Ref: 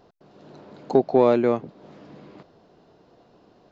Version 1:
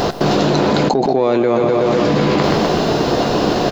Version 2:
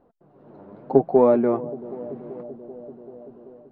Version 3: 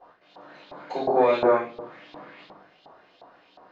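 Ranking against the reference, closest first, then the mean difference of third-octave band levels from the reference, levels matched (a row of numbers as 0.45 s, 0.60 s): 2, 3, 1; 4.5 dB, 6.0 dB, 16.0 dB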